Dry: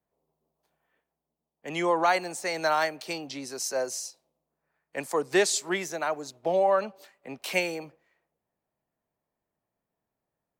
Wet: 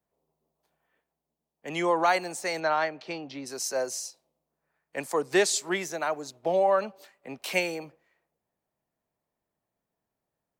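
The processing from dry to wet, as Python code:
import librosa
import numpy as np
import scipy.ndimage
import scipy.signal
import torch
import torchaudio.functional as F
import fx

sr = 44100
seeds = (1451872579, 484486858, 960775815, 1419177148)

y = fx.air_absorb(x, sr, metres=190.0, at=(2.59, 3.45), fade=0.02)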